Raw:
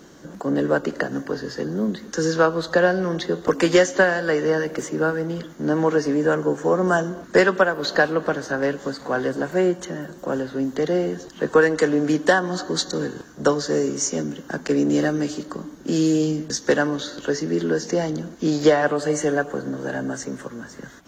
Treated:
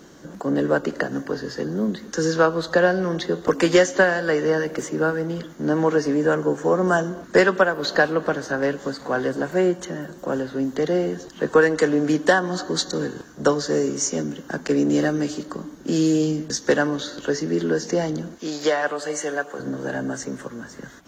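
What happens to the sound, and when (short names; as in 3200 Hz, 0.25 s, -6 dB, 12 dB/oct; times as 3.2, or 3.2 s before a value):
18.38–19.6 HPF 750 Hz 6 dB/oct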